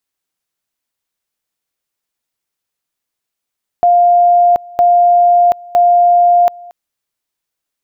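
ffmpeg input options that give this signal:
ffmpeg -f lavfi -i "aevalsrc='pow(10,(-5.5-24.5*gte(mod(t,0.96),0.73))/20)*sin(2*PI*702*t)':duration=2.88:sample_rate=44100" out.wav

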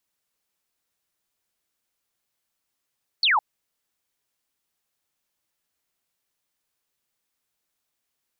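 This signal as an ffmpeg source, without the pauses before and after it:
ffmpeg -f lavfi -i "aevalsrc='0.15*clip(t/0.002,0,1)*clip((0.16-t)/0.002,0,1)*sin(2*PI*4700*0.16/log(780/4700)*(exp(log(780/4700)*t/0.16)-1))':duration=0.16:sample_rate=44100" out.wav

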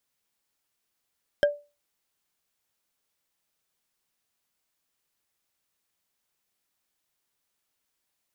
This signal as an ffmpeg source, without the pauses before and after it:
ffmpeg -f lavfi -i "aevalsrc='0.2*pow(10,-3*t/0.29)*sin(2*PI*583*t)+0.1*pow(10,-3*t/0.086)*sin(2*PI*1607.3*t)+0.0501*pow(10,-3*t/0.038)*sin(2*PI*3150.5*t)+0.0251*pow(10,-3*t/0.021)*sin(2*PI*5207.9*t)+0.0126*pow(10,-3*t/0.013)*sin(2*PI*7777.2*t)':duration=0.45:sample_rate=44100" out.wav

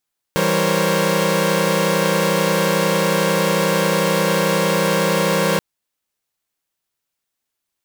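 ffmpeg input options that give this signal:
ffmpeg -f lavfi -i "aevalsrc='0.106*((2*mod(164.81*t,1)-1)+(2*mod(196*t,1)-1)+(2*mod(466.16*t,1)-1)+(2*mod(523.25*t,1)-1)+(2*mod(554.37*t,1)-1))':duration=5.23:sample_rate=44100" out.wav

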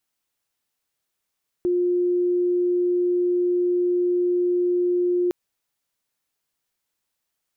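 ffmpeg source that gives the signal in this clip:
ffmpeg -f lavfi -i "sine=frequency=355:duration=3.66:sample_rate=44100,volume=0.06dB" out.wav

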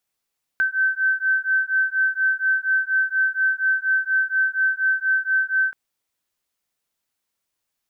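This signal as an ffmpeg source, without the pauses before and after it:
ffmpeg -f lavfi -i "aevalsrc='0.0891*(sin(2*PI*1540*t)+sin(2*PI*1544.2*t))':duration=5.13:sample_rate=44100" out.wav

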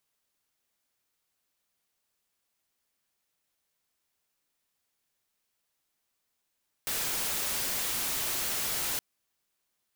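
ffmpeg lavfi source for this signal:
ffmpeg -f lavfi -i "anoisesrc=color=white:amplitude=0.0461:duration=2.12:sample_rate=44100:seed=1" out.wav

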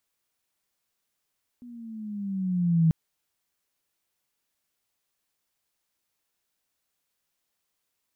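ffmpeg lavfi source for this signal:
ffmpeg -f lavfi -i "aevalsrc='pow(10,(-16+25.5*(t/1.29-1))/20)*sin(2*PI*246*1.29/(-7.5*log(2)/12)*(exp(-7.5*log(2)/12*t/1.29)-1))':duration=1.29:sample_rate=44100" out.wav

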